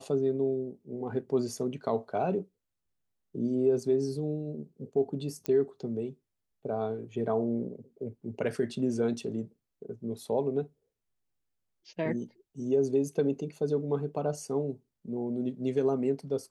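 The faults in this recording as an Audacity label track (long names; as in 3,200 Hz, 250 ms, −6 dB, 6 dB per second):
5.460000	5.460000	click −18 dBFS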